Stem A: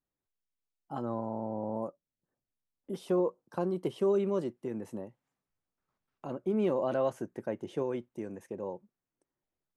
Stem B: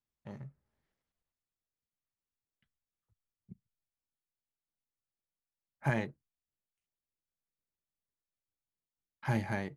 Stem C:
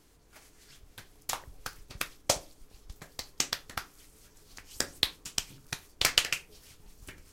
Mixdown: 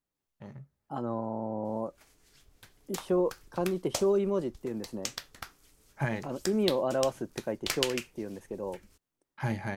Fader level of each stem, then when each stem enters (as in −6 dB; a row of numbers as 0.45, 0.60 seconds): +1.5, 0.0, −6.0 decibels; 0.00, 0.15, 1.65 seconds